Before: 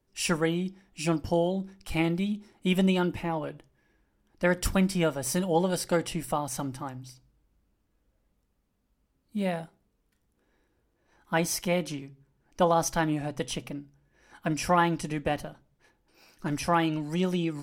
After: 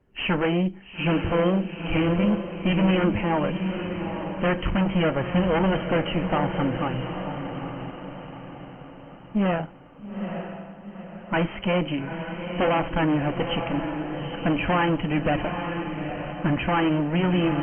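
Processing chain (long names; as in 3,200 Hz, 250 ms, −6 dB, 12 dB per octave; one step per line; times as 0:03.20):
in parallel at −2 dB: brickwall limiter −20 dBFS, peak gain reduction 9.5 dB
on the sum: soft clipping −10 dBFS, distortion −25 dB
harmonic generator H 5 −8 dB, 8 −16 dB, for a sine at −11.5 dBFS
flanger 1.7 Hz, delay 0.3 ms, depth 4.9 ms, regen −85%
linear-phase brick-wall low-pass 3,200 Hz
on a send: feedback delay with all-pass diffusion 872 ms, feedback 47%, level −6.5 dB
on the sum: Opus 24 kbit/s 48,000 Hz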